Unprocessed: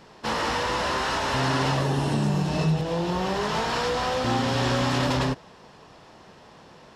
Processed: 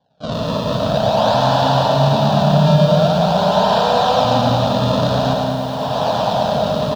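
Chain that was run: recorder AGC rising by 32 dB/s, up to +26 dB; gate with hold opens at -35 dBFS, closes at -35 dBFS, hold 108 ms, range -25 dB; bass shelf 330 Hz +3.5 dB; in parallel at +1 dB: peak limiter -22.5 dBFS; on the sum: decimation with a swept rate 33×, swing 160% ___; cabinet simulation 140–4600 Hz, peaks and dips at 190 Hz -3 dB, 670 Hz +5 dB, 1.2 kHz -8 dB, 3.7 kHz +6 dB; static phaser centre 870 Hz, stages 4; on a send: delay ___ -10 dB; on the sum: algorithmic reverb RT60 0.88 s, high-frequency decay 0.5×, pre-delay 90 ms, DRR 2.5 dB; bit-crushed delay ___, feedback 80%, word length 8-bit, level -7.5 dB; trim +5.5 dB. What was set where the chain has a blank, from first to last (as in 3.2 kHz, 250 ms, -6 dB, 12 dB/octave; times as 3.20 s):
0.47 Hz, 113 ms, 108 ms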